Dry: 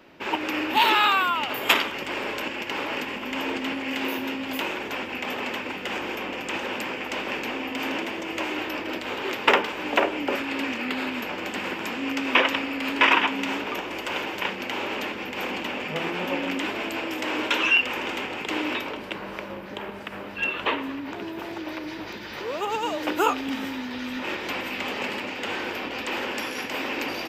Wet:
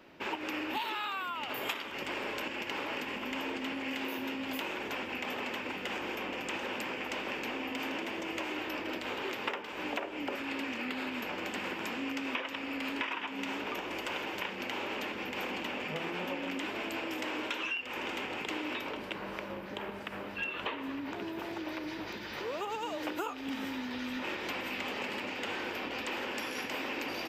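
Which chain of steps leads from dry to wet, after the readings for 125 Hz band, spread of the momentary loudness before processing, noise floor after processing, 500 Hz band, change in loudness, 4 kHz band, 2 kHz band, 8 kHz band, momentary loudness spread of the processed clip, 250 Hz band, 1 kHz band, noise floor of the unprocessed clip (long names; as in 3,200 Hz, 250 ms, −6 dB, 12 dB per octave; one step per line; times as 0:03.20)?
−7.0 dB, 12 LU, −42 dBFS, −9.0 dB, −10.0 dB, −10.5 dB, −10.0 dB, −8.0 dB, 4 LU, −8.0 dB, −11.0 dB, −36 dBFS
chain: downward compressor 12 to 1, threshold −28 dBFS, peak gain reduction 15 dB
level −4.5 dB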